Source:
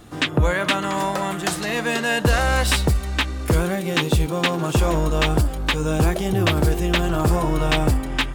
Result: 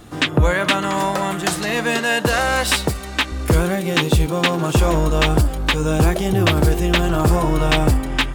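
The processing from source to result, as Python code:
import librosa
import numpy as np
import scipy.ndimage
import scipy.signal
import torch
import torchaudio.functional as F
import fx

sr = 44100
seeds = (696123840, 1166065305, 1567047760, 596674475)

y = fx.highpass(x, sr, hz=210.0, slope=6, at=(1.99, 3.32))
y = y * librosa.db_to_amplitude(3.0)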